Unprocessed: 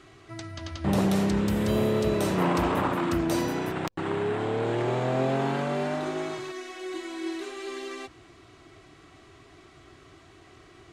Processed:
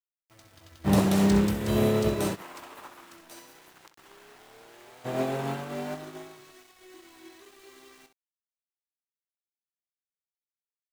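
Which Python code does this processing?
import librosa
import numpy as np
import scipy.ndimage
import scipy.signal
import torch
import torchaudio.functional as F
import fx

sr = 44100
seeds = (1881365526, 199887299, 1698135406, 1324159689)

y = fx.highpass(x, sr, hz=1300.0, slope=6, at=(2.34, 5.04), fade=0.02)
y = np.where(np.abs(y) >= 10.0 ** (-37.0 / 20.0), y, 0.0)
y = fx.high_shelf(y, sr, hz=6800.0, db=4.5)
y = fx.room_early_taps(y, sr, ms=(20, 65), db=(-12.0, -10.5))
y = fx.upward_expand(y, sr, threshold_db=-33.0, expansion=2.5)
y = y * librosa.db_to_amplitude(3.0)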